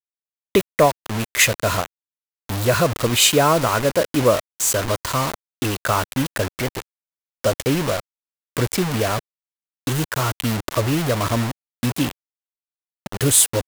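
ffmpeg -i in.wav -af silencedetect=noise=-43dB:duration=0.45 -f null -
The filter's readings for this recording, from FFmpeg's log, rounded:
silence_start: 0.00
silence_end: 0.55 | silence_duration: 0.55
silence_start: 1.86
silence_end: 2.49 | silence_duration: 0.63
silence_start: 6.82
silence_end: 7.44 | silence_duration: 0.62
silence_start: 8.00
silence_end: 8.57 | silence_duration: 0.57
silence_start: 9.19
silence_end: 9.87 | silence_duration: 0.68
silence_start: 12.11
silence_end: 13.06 | silence_duration: 0.95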